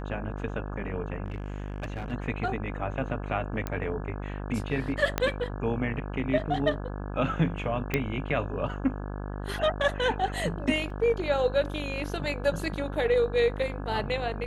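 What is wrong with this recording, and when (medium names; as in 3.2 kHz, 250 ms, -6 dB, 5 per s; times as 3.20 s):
buzz 50 Hz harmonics 34 -35 dBFS
1.24–2.13 s: clipped -30 dBFS
3.67 s: pop -17 dBFS
5.18 s: pop -10 dBFS
7.94 s: pop -12 dBFS
10.90 s: dropout 3.5 ms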